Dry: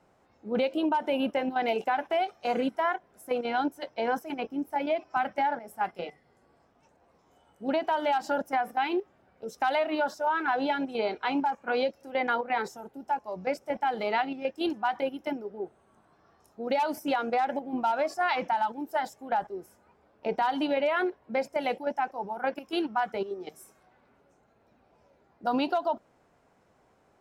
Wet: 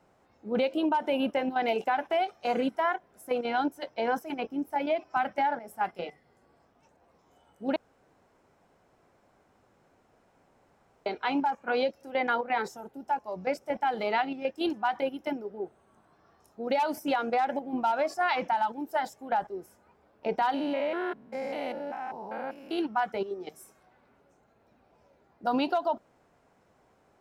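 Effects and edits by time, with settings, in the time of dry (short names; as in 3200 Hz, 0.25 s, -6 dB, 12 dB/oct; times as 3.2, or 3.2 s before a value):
7.76–11.06 room tone
20.54–22.79 stepped spectrum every 0.2 s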